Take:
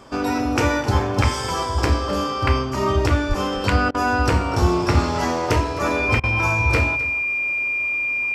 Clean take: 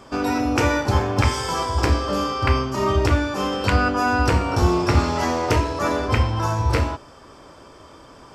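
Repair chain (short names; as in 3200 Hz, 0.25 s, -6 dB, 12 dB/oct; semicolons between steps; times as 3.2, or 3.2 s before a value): notch 2400 Hz, Q 30; de-plosive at 3.28; interpolate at 3.91/6.2, 34 ms; inverse comb 0.26 s -16.5 dB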